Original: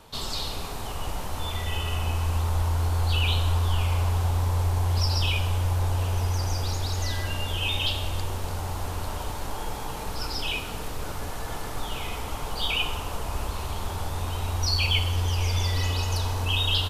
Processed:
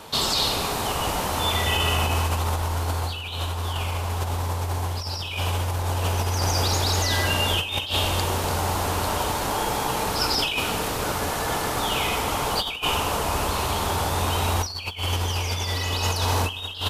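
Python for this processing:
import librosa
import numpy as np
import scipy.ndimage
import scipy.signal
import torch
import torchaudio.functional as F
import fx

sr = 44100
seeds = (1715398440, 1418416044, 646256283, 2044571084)

y = fx.highpass(x, sr, hz=170.0, slope=6)
y = fx.over_compress(y, sr, threshold_db=-32.0, ratio=-0.5)
y = y * 10.0 ** (8.5 / 20.0)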